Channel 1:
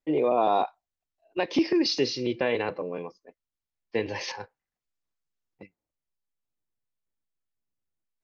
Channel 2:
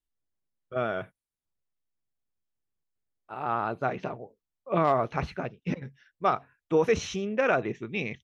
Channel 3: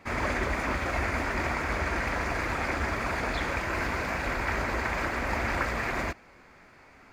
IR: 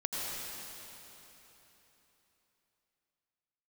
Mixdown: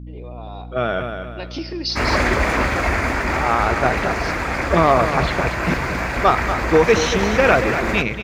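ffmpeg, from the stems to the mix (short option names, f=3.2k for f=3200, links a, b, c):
-filter_complex "[0:a]equalizer=f=4.6k:w=1.1:g=10,volume=-16.5dB,asplit=2[a][b];[b]volume=-18dB[c];[1:a]equalizer=f=3.9k:w=1.1:g=5,volume=3dB,asplit=2[d][e];[e]volume=-9.5dB[f];[2:a]adelay=1900,volume=1dB,asplit=2[g][h];[h]volume=-15dB[i];[3:a]atrim=start_sample=2205[j];[c][j]afir=irnorm=-1:irlink=0[k];[f][i]amix=inputs=2:normalize=0,aecho=0:1:234|468|702|936|1170:1|0.34|0.116|0.0393|0.0134[l];[a][d][g][k][l]amix=inputs=5:normalize=0,dynaudnorm=f=110:g=17:m=10.5dB,aeval=exprs='val(0)+0.0224*(sin(2*PI*60*n/s)+sin(2*PI*2*60*n/s)/2+sin(2*PI*3*60*n/s)/3+sin(2*PI*4*60*n/s)/4+sin(2*PI*5*60*n/s)/5)':c=same"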